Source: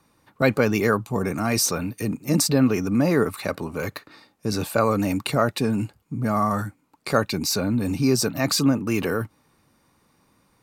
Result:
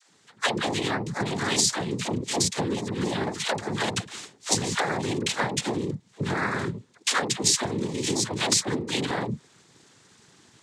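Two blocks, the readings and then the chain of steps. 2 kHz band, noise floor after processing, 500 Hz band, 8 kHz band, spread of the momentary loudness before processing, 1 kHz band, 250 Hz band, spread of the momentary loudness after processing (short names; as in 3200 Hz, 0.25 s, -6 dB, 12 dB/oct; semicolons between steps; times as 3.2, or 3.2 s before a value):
-0.5 dB, -60 dBFS, -6.5 dB, +2.5 dB, 10 LU, -2.5 dB, -7.5 dB, 9 LU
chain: vocal rider within 4 dB 2 s; bell 850 Hz -3.5 dB; dispersion lows, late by 99 ms, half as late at 430 Hz; noise vocoder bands 6; compressor 10:1, threshold -28 dBFS, peak gain reduction 14.5 dB; high shelf 2300 Hz +10.5 dB; gain +3 dB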